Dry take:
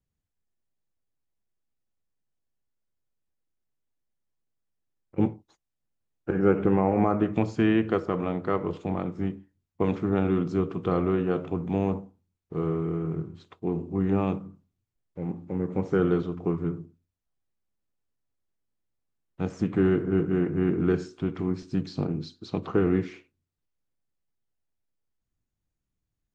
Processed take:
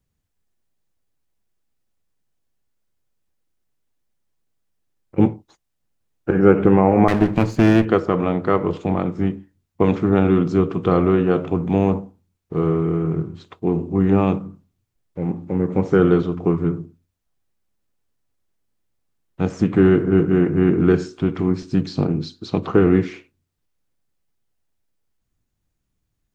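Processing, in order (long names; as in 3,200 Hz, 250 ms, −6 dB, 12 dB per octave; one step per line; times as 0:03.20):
0:07.08–0:07.85: lower of the sound and its delayed copy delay 0.46 ms
level +8.5 dB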